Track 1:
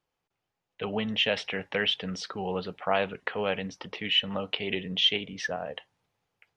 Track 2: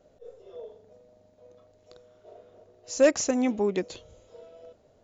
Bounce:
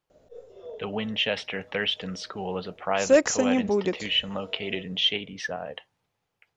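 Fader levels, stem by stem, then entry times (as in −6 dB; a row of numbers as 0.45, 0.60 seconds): 0.0, +1.5 decibels; 0.00, 0.10 seconds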